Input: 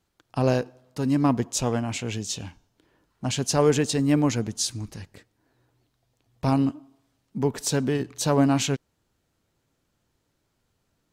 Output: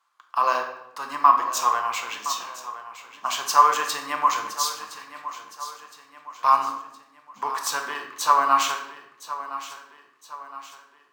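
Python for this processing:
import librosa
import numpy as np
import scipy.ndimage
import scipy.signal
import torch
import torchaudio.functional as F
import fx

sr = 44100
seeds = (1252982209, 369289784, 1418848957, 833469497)

y = fx.highpass_res(x, sr, hz=1100.0, q=11.0)
y = fx.echo_feedback(y, sr, ms=1015, feedback_pct=47, wet_db=-14.0)
y = fx.room_shoebox(y, sr, seeds[0], volume_m3=270.0, walls='mixed', distance_m=0.81)
y = np.interp(np.arange(len(y)), np.arange(len(y))[::2], y[::2])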